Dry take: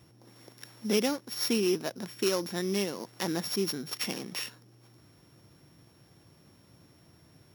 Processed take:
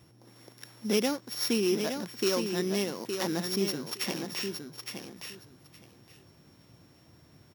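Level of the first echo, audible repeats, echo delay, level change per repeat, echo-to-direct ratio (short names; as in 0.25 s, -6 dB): -6.5 dB, 2, 0.865 s, -15.5 dB, -6.5 dB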